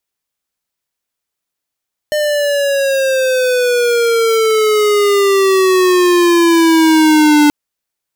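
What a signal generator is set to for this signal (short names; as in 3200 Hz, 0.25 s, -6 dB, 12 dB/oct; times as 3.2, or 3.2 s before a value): gliding synth tone square, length 5.38 s, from 605 Hz, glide -12.5 st, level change +6.5 dB, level -8 dB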